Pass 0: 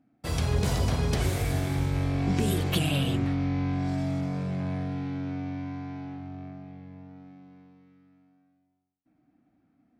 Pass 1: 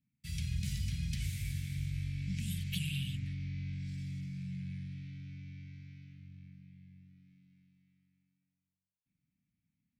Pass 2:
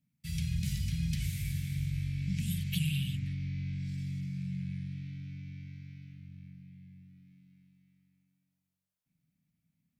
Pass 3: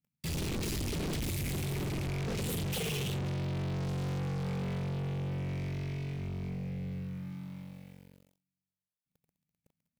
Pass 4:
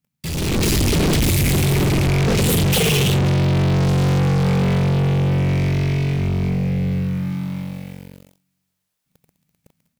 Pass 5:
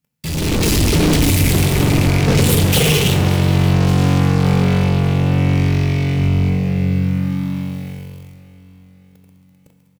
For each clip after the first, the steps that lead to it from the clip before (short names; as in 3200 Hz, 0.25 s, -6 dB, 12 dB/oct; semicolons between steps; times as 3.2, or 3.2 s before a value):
elliptic band-stop 180–2200 Hz, stop band 70 dB; gain -8.5 dB
thirty-one-band EQ 160 Hz +7 dB, 630 Hz +6 dB, 12500 Hz +5 dB; gain +1.5 dB
wavefolder -32.5 dBFS; sample leveller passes 5
AGC gain up to 9.5 dB; gain +8 dB
feedback echo 0.574 s, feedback 52%, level -17.5 dB; FDN reverb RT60 1.6 s, low-frequency decay 1×, high-frequency decay 0.85×, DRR 7.5 dB; gain +2 dB